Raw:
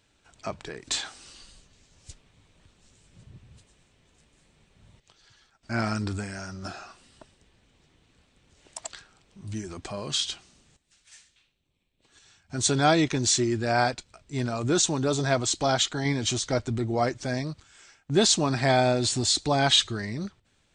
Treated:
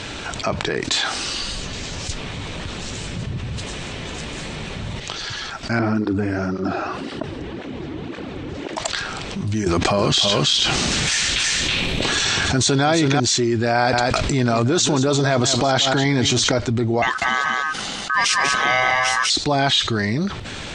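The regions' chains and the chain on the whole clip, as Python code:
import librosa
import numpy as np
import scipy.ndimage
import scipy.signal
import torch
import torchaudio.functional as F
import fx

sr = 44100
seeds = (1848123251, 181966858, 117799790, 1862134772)

y = fx.chain(x, sr, fx.lowpass(hz=1400.0, slope=6),
    fx.peak_eq(hz=320.0, db=9.5, octaves=0.97),
    fx.flanger_cancel(hz=1.9, depth_ms=5.8), at=(5.79, 8.78))
y = fx.chain(y, sr, fx.echo_single(ms=325, db=-4.0),
    fx.env_flatten(amount_pct=70), at=(9.66, 13.2))
y = fx.chain(y, sr, fx.echo_single(ms=180, db=-14.5),
    fx.env_flatten(amount_pct=70), at=(13.75, 16.52))
y = fx.chain(y, sr, fx.ring_mod(carrier_hz=1400.0),
    fx.echo_single(ms=195, db=-5.5), at=(17.02, 19.3))
y = scipy.signal.sosfilt(scipy.signal.butter(2, 5800.0, 'lowpass', fs=sr, output='sos'), y)
y = fx.low_shelf(y, sr, hz=87.0, db=-6.0)
y = fx.env_flatten(y, sr, amount_pct=70)
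y = y * librosa.db_to_amplitude(1.5)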